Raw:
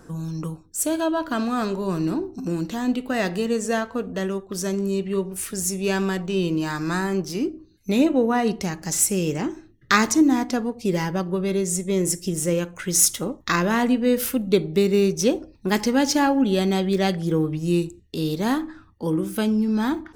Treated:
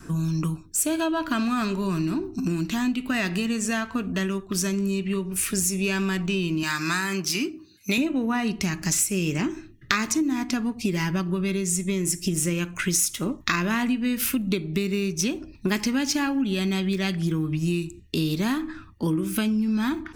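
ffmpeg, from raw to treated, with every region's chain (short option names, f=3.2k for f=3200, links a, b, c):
-filter_complex "[0:a]asettb=1/sr,asplit=3[a][b][c];[a]atrim=end=6.634[d];[b]atrim=start=6.63:end=7.98,asetpts=PTS-STARTPTS,afade=t=in:d=0.004:c=qsin,afade=t=out:st=1.346:d=0.004:c=qsin,highpass=110,tiltshelf=f=880:g=-5.5,asoftclip=type=hard:threshold=-11.5dB[e];[c]atrim=start=7.976[f];[d][e]acrossfade=d=0.004:c1=hsin:c2=qsin[g];[g][f]acrossfade=d=0.004:c1=qsin:c2=hsin,equalizer=f=500:t=o:w=0.33:g=-10,equalizer=f=800:t=o:w=0.33:g=-8,equalizer=f=2.5k:t=o:w=0.33:g=7,acompressor=threshold=-27dB:ratio=6,adynamicequalizer=threshold=0.00398:dfrequency=500:dqfactor=1.7:tfrequency=500:tqfactor=1.7:attack=5:release=100:ratio=0.375:range=3.5:mode=cutabove:tftype=bell,volume=6dB"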